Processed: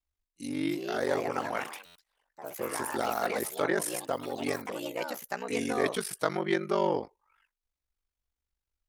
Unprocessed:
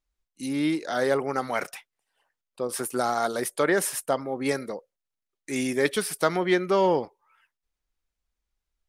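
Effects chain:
ring modulation 24 Hz
delay with pitch and tempo change per echo 372 ms, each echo +4 semitones, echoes 3, each echo −6 dB
buffer that repeats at 0:01.85, samples 512, times 8
level −3 dB

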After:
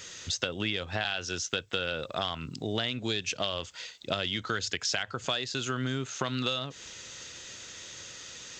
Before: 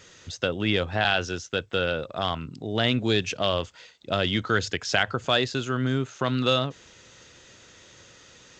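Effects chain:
high-shelf EQ 2,100 Hz +10.5 dB
downward compressor 10 to 1, threshold −27 dBFS, peak gain reduction 15 dB

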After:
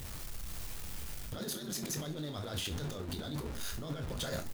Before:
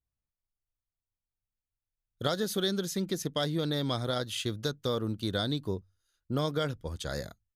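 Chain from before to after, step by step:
converter with a step at zero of −35 dBFS
compressor whose output falls as the input rises −35 dBFS, ratio −1
echo with shifted repeats 109 ms, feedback 60%, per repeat +110 Hz, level −18.5 dB
four-comb reverb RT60 0.32 s, combs from 27 ms, DRR 5.5 dB
time stretch by overlap-add 0.6×, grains 21 ms
level −3.5 dB

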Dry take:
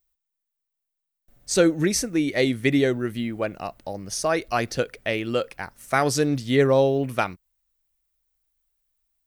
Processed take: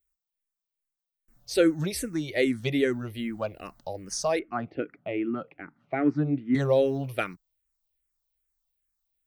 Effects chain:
0:04.39–0:06.55: loudspeaker in its box 160–2,100 Hz, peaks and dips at 160 Hz +9 dB, 300 Hz +10 dB, 510 Hz −8 dB, 1,000 Hz −7 dB, 1,700 Hz −7 dB
frequency shifter mixed with the dry sound −2.5 Hz
level −2 dB

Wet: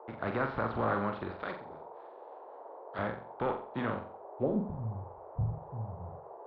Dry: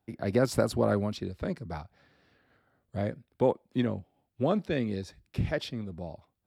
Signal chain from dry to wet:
compressing power law on the bin magnitudes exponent 0.58
0:01.31–0:02.99: RIAA equalisation recording
0:01.51–0:01.93: gain on a spectral selection 480–7,900 Hz −24 dB
high shelf with overshoot 5,400 Hz −13.5 dB, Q 3
brickwall limiter −15.5 dBFS, peak gain reduction 5.5 dB
leveller curve on the samples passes 1
low-pass filter sweep 1,300 Hz → 110 Hz, 0:04.25–0:04.75
noise in a band 380–960 Hz −41 dBFS
flutter between parallel walls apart 7.6 metres, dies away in 0.42 s
level −8.5 dB

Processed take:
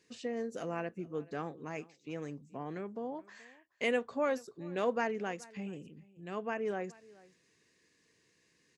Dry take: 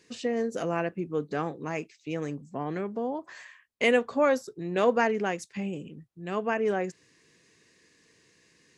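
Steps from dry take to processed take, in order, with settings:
single-tap delay 427 ms −22.5 dB
level −8.5 dB

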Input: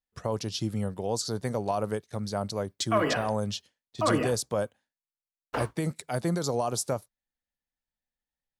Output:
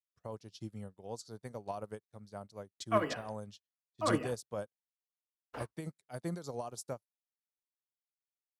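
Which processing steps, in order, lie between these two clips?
expander for the loud parts 2.5 to 1, over −44 dBFS
level −2.5 dB

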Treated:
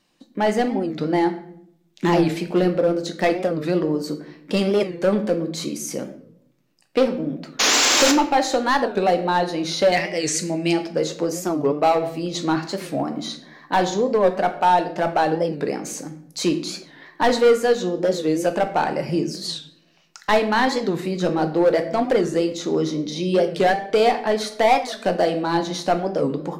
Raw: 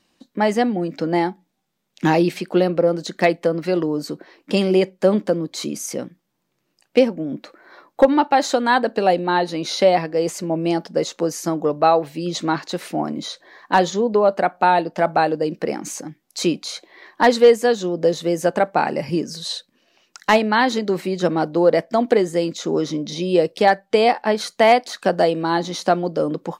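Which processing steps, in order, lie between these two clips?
0:07.60–0:08.12: sound drawn into the spectrogram noise 230–7,700 Hz −15 dBFS
0:09.92–0:10.73: graphic EQ with 10 bands 500 Hz −4 dB, 1,000 Hz −7 dB, 2,000 Hz +10 dB, 4,000 Hz +4 dB, 8,000 Hz +11 dB
in parallel at −4 dB: wave folding −11.5 dBFS
on the sum: rectangular room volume 130 cubic metres, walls mixed, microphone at 0.43 metres
wow of a warped record 45 rpm, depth 160 cents
level −6 dB

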